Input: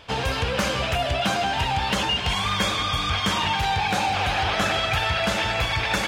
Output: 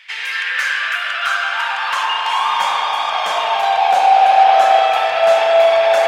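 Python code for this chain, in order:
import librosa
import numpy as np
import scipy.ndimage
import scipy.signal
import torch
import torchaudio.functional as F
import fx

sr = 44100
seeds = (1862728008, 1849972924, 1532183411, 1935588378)

y = fx.filter_sweep_highpass(x, sr, from_hz=2000.0, to_hz=680.0, start_s=0.17, end_s=3.32, q=5.9)
y = fx.rev_spring(y, sr, rt60_s=3.8, pass_ms=(36,), chirp_ms=70, drr_db=-0.5)
y = F.gain(torch.from_numpy(y), -1.0).numpy()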